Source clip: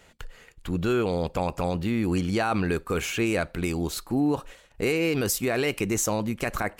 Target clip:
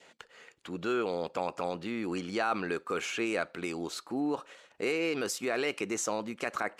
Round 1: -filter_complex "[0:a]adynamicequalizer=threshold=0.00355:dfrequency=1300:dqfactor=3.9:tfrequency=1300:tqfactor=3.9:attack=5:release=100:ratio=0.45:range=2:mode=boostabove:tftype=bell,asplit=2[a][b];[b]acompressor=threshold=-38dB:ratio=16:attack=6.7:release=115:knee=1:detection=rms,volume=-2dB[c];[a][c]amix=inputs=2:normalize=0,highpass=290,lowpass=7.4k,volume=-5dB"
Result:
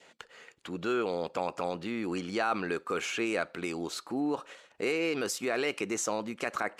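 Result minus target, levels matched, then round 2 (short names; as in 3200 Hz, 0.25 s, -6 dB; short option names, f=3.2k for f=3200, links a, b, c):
compressor: peak gain reduction -11 dB
-filter_complex "[0:a]adynamicequalizer=threshold=0.00355:dfrequency=1300:dqfactor=3.9:tfrequency=1300:tqfactor=3.9:attack=5:release=100:ratio=0.45:range=2:mode=boostabove:tftype=bell,asplit=2[a][b];[b]acompressor=threshold=-49.5dB:ratio=16:attack=6.7:release=115:knee=1:detection=rms,volume=-2dB[c];[a][c]amix=inputs=2:normalize=0,highpass=290,lowpass=7.4k,volume=-5dB"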